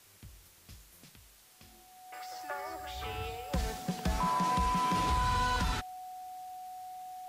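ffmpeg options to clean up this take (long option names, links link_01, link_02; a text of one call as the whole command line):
ffmpeg -i in.wav -af "bandreject=frequency=740:width=30,afftdn=noise_reduction=20:noise_floor=-59" out.wav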